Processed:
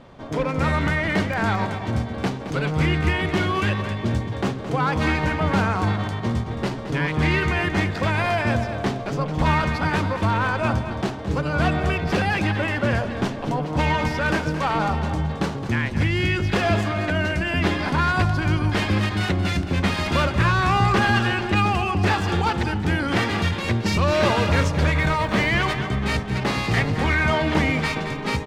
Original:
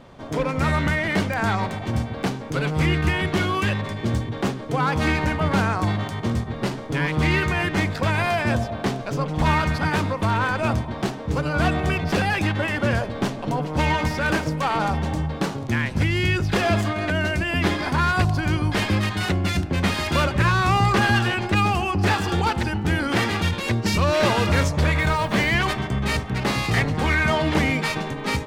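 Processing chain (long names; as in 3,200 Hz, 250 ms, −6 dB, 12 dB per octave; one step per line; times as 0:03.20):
high-shelf EQ 9,000 Hz −10 dB
on a send: repeating echo 219 ms, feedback 37%, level −11 dB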